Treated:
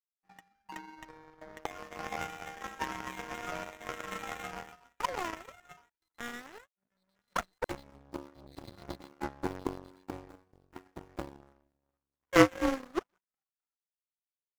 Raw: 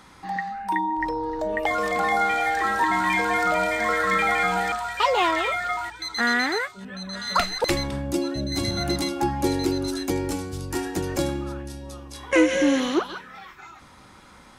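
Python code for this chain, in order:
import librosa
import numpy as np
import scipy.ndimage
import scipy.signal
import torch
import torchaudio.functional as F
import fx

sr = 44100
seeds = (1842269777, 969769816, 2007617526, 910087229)

y = scipy.signal.medfilt(x, 15)
y = fx.power_curve(y, sr, exponent=3.0)
y = F.gain(torch.from_numpy(y), 4.0).numpy()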